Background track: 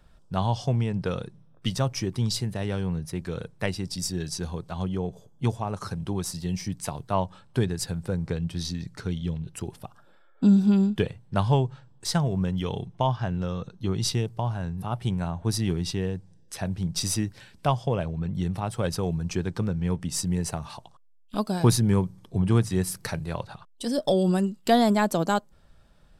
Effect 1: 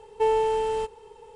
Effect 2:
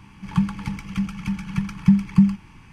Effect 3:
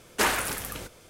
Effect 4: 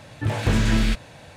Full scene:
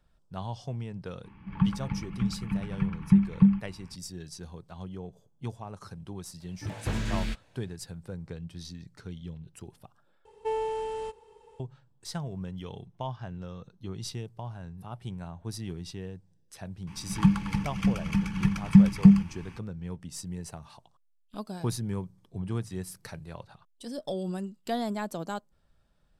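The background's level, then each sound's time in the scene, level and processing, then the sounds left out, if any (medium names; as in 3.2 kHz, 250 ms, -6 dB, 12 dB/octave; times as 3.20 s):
background track -11 dB
1.24 s: add 2 -4 dB + distance through air 450 m
6.40 s: add 4 -9.5 dB + upward expansion, over -35 dBFS
10.25 s: replace with 1 -8 dB
16.87 s: add 2 -0.5 dB
not used: 3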